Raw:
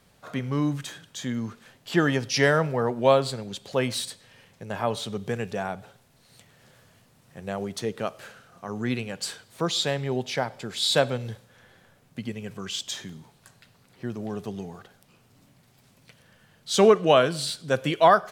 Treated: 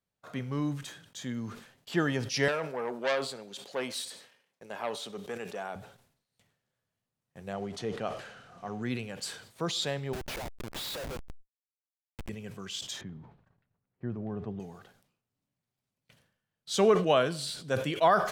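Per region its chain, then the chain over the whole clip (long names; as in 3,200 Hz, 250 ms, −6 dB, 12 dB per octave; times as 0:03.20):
0:02.48–0:05.76: high-pass filter 300 Hz + saturating transformer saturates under 2,100 Hz
0:07.53–0:08.83: mu-law and A-law mismatch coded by mu + high-frequency loss of the air 56 metres + hollow resonant body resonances 730/3,000 Hz, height 10 dB, ringing for 95 ms
0:10.13–0:12.29: high-pass filter 450 Hz + comparator with hysteresis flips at −34 dBFS
0:13.01–0:14.60: low-pass filter 1,700 Hz + low-shelf EQ 160 Hz +8 dB
whole clip: noise gate −51 dBFS, range −22 dB; level that may fall only so fast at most 91 dB per second; level −6.5 dB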